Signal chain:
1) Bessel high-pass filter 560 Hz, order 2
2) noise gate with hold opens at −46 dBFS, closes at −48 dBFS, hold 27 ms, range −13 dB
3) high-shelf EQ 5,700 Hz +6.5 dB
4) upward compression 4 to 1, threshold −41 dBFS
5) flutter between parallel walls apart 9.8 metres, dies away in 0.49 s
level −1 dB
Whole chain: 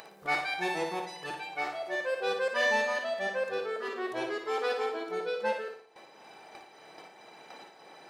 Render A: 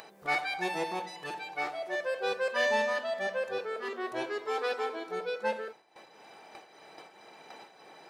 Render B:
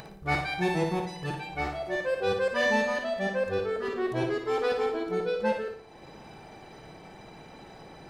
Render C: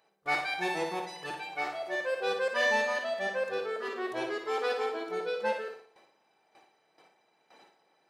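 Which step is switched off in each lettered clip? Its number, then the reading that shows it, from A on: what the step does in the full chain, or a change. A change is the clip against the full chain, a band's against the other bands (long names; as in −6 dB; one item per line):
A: 5, echo-to-direct ratio −6.0 dB to none audible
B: 1, 250 Hz band +9.0 dB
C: 4, change in momentary loudness spread −13 LU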